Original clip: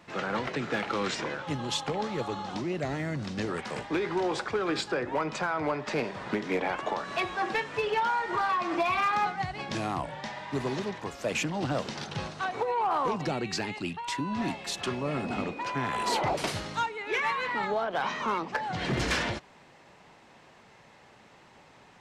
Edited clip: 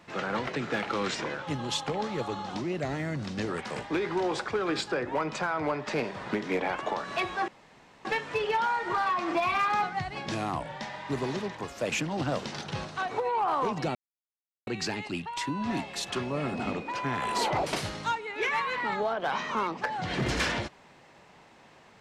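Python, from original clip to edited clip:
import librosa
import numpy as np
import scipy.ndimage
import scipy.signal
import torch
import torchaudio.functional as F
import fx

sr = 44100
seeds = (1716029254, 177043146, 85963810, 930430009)

y = fx.edit(x, sr, fx.insert_room_tone(at_s=7.48, length_s=0.57),
    fx.insert_silence(at_s=13.38, length_s=0.72), tone=tone)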